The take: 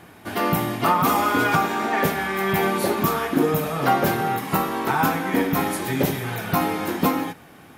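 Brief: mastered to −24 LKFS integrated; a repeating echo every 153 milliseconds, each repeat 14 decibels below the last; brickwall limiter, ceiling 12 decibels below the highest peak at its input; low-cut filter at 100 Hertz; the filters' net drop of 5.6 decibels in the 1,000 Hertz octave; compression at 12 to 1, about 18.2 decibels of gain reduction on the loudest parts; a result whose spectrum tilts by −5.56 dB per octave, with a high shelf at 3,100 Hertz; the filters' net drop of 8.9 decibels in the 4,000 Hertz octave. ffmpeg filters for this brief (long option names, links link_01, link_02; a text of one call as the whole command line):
ffmpeg -i in.wav -af "highpass=100,equalizer=frequency=1000:width_type=o:gain=-6.5,highshelf=frequency=3100:gain=-5,equalizer=frequency=4000:width_type=o:gain=-8,acompressor=threshold=-36dB:ratio=12,alimiter=level_in=12.5dB:limit=-24dB:level=0:latency=1,volume=-12.5dB,aecho=1:1:153|306:0.2|0.0399,volume=20.5dB" out.wav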